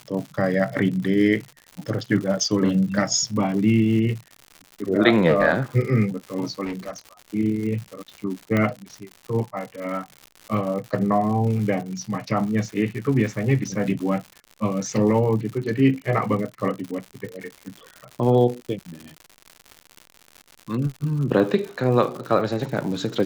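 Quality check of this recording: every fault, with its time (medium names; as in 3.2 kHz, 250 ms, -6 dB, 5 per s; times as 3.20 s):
crackle 150 per s -31 dBFS
6.64–7.01 s: clipped -25.5 dBFS
8.57 s: pop -10 dBFS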